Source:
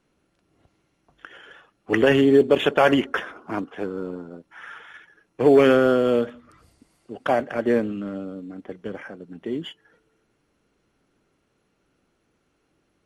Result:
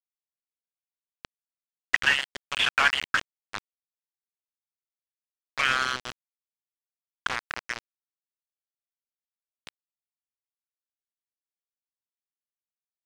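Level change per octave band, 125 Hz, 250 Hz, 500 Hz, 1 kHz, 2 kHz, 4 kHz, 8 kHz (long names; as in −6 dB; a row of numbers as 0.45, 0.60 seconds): −18.0 dB, −28.0 dB, −27.0 dB, −4.5 dB, +2.5 dB, +4.0 dB, can't be measured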